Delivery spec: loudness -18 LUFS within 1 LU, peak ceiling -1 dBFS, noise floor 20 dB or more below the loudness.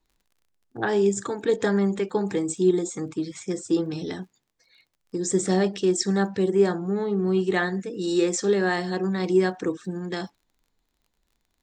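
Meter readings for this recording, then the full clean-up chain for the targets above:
ticks 32/s; loudness -25.0 LUFS; peak -9.0 dBFS; loudness target -18.0 LUFS
-> de-click; gain +7 dB

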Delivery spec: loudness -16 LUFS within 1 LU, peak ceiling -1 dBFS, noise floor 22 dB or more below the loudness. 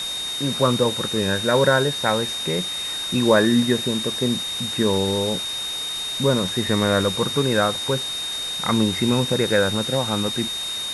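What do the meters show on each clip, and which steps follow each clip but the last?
steady tone 3700 Hz; tone level -26 dBFS; noise floor -28 dBFS; noise floor target -43 dBFS; loudness -21.0 LUFS; peak -4.0 dBFS; loudness target -16.0 LUFS
-> notch 3700 Hz, Q 30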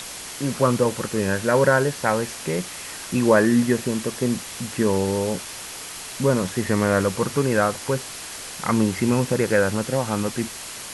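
steady tone none; noise floor -36 dBFS; noise floor target -45 dBFS
-> denoiser 9 dB, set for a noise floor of -36 dBFS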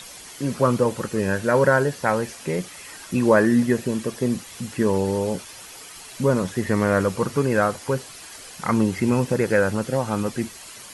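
noise floor -41 dBFS; noise floor target -45 dBFS
-> denoiser 6 dB, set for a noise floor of -41 dBFS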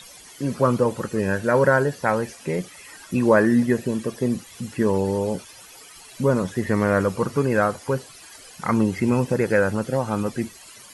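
noise floor -45 dBFS; loudness -22.5 LUFS; peak -5.0 dBFS; loudness target -16.0 LUFS
-> gain +6.5 dB; limiter -1 dBFS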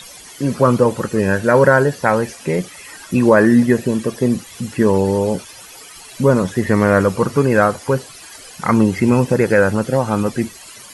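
loudness -16.0 LUFS; peak -1.0 dBFS; noise floor -39 dBFS

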